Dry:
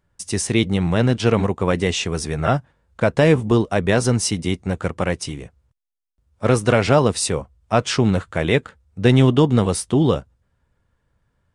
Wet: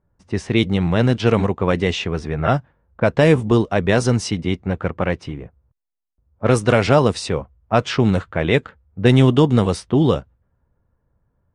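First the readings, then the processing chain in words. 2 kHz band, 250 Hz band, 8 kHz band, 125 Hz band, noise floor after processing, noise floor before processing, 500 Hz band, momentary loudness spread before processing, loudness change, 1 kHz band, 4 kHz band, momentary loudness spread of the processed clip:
+1.0 dB, +1.0 dB, -8.0 dB, +1.0 dB, -70 dBFS, -70 dBFS, +1.0 dB, 9 LU, +1.0 dB, +1.0 dB, -0.5 dB, 10 LU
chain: short-mantissa float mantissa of 8-bit; low-pass opened by the level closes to 1000 Hz, open at -10.5 dBFS; gain +1 dB

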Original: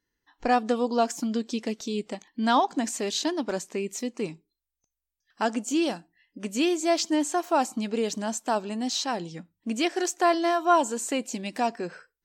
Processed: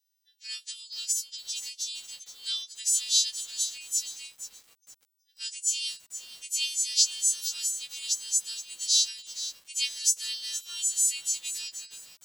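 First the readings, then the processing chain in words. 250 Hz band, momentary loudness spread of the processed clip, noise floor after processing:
under -40 dB, 16 LU, -74 dBFS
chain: frequency quantiser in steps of 2 st; inverse Chebyshev high-pass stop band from 720 Hz, stop band 70 dB; lo-fi delay 0.471 s, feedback 35%, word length 7-bit, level -11.5 dB

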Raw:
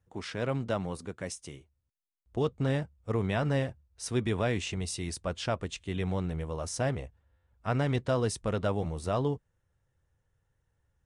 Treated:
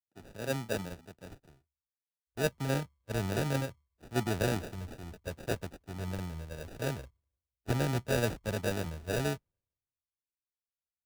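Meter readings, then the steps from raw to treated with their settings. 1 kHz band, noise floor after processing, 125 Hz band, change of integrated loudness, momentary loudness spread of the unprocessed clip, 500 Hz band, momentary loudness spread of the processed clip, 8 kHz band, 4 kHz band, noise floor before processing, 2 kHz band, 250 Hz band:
-4.0 dB, under -85 dBFS, -3.5 dB, -2.5 dB, 10 LU, -3.5 dB, 13 LU, -3.0 dB, -2.0 dB, -78 dBFS, 0.0 dB, -3.5 dB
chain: sample-and-hold 41×; three-band expander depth 100%; gain -3.5 dB

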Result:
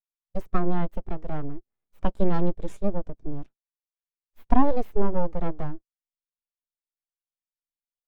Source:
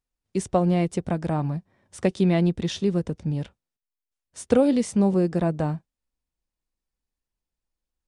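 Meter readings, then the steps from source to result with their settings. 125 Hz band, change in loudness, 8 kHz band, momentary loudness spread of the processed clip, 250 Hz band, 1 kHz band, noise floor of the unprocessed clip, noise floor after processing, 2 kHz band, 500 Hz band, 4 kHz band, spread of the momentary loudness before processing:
-8.0 dB, -6.0 dB, under -20 dB, 15 LU, -6.5 dB, +1.0 dB, under -85 dBFS, under -85 dBFS, -6.0 dB, -6.0 dB, under -15 dB, 11 LU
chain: full-wave rectifier; spectral expander 1.5:1; gain +3 dB

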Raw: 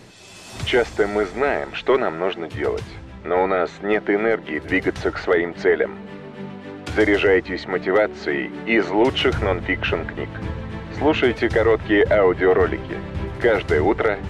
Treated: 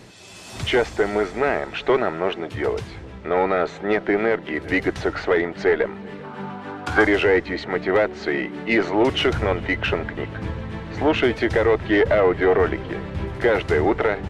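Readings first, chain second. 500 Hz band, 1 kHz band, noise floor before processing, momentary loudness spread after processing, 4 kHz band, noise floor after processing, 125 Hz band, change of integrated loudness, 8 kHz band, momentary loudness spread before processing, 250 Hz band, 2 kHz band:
-1.0 dB, -0.5 dB, -39 dBFS, 12 LU, -0.5 dB, -39 dBFS, -0.5 dB, -1.0 dB, n/a, 13 LU, -1.0 dB, -0.5 dB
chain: one diode to ground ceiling -9.5 dBFS; outdoor echo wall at 67 m, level -24 dB; spectral gain 6.24–7.07, 690–1700 Hz +9 dB

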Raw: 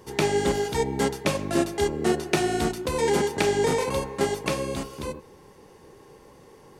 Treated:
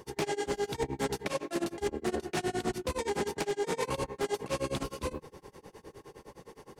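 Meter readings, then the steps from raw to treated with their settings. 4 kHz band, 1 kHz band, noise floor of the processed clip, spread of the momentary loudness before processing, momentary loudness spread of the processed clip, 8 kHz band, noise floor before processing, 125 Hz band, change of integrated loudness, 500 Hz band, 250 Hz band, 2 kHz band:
-8.0 dB, -7.5 dB, -63 dBFS, 8 LU, 19 LU, -8.5 dB, -51 dBFS, -9.5 dB, -8.5 dB, -8.5 dB, -9.0 dB, -8.5 dB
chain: notches 50/100/150/200/250 Hz; tremolo 9.7 Hz, depth 97%; wavefolder -17.5 dBFS; reverse; compressor 6:1, threshold -33 dBFS, peak gain reduction 11.5 dB; reverse; Doppler distortion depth 0.17 ms; gain +4 dB

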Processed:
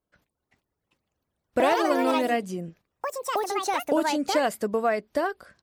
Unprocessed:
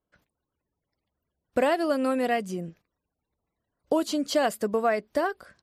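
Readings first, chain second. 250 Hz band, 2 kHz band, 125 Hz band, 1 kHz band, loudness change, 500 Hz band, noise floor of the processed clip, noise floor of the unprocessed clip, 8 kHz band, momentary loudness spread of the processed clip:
+0.5 dB, +2.5 dB, 0.0 dB, +4.5 dB, +1.0 dB, +1.0 dB, -83 dBFS, -85 dBFS, +3.5 dB, 12 LU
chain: echoes that change speed 0.42 s, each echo +5 st, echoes 2

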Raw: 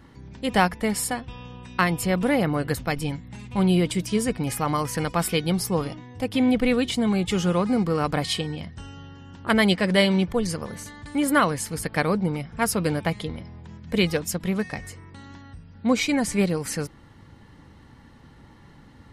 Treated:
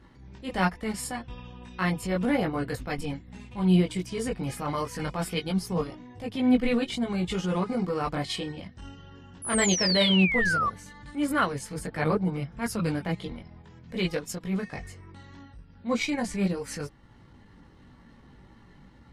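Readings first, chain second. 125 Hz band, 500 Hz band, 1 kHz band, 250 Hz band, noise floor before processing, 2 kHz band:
-3.5 dB, -5.0 dB, -4.5 dB, -4.0 dB, -50 dBFS, -3.0 dB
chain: chorus voices 6, 0.69 Hz, delay 19 ms, depth 3.1 ms; painted sound fall, 9.42–10.7, 1100–11000 Hz -25 dBFS; high shelf 11000 Hz -11.5 dB; transient shaper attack -8 dB, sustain -4 dB

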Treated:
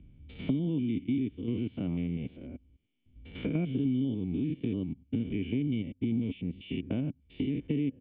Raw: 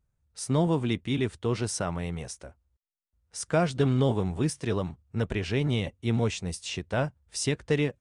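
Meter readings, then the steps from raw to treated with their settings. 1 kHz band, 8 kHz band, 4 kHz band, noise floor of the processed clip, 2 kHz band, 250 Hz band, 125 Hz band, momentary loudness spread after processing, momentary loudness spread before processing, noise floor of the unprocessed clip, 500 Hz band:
under -20 dB, under -40 dB, -12.0 dB, -67 dBFS, -12.5 dB, +0.5 dB, -6.0 dB, 8 LU, 10 LU, -78 dBFS, -11.5 dB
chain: stepped spectrum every 0.1 s; vocal tract filter i; three-band squash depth 100%; gain +5 dB

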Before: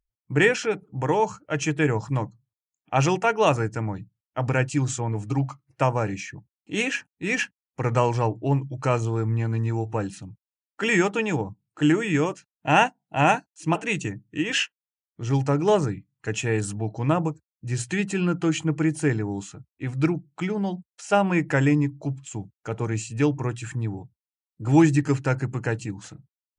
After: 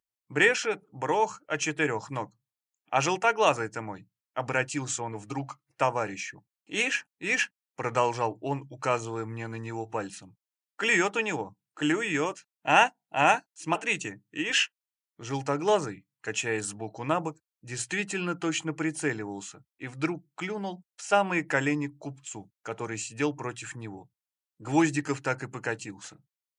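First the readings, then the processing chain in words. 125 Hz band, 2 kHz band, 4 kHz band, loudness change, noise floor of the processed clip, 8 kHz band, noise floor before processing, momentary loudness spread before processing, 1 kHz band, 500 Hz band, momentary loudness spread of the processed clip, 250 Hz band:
-13.5 dB, -0.5 dB, 0.0 dB, -4.0 dB, under -85 dBFS, 0.0 dB, under -85 dBFS, 12 LU, -1.5 dB, -4.5 dB, 16 LU, -8.0 dB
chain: HPF 620 Hz 6 dB/oct

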